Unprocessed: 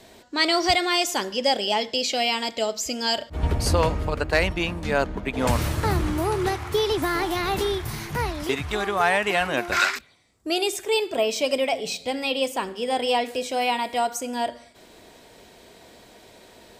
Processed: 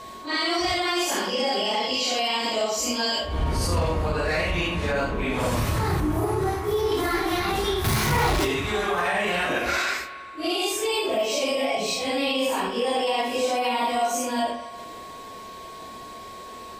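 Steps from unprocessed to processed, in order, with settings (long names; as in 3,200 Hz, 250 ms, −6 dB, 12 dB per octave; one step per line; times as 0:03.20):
random phases in long frames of 200 ms
0:06.00–0:06.92: parametric band 3,400 Hz −9 dB 2.3 octaves
in parallel at −1 dB: downward compressor, threshold −33 dBFS, peak gain reduction 16.5 dB
on the sum: brickwall limiter −16 dBFS, peak gain reduction 8.5 dB
spring reverb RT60 2.1 s, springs 45/57 ms, chirp 20 ms, DRR 11 dB
steady tone 1,100 Hz −39 dBFS
0:07.84–0:08.45: power curve on the samples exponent 0.5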